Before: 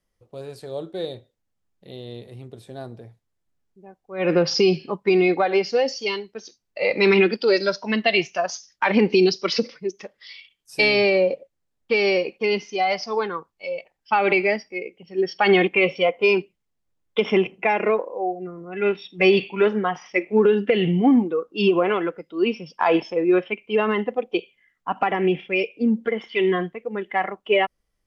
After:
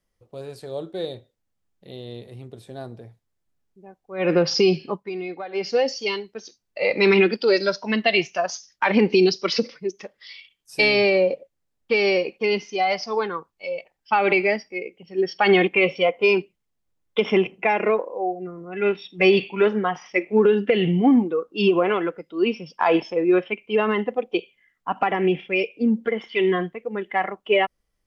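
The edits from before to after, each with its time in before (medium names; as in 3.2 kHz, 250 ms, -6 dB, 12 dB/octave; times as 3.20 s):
4.93–5.68 s: dip -13 dB, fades 0.15 s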